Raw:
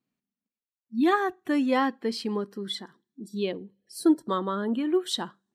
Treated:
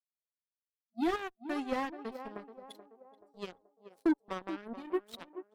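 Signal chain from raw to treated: Chebyshev shaper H 3 -37 dB, 7 -17 dB, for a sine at -11 dBFS; band-passed feedback delay 430 ms, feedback 53%, band-pass 550 Hz, level -10.5 dB; slew-rate limiter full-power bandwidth 95 Hz; trim -8 dB

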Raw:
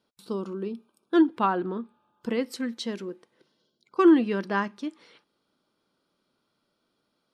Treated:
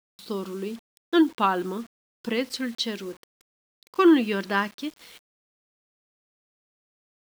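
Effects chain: peaking EQ 3.5 kHz +9 dB 1.9 oct; word length cut 8-bit, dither none

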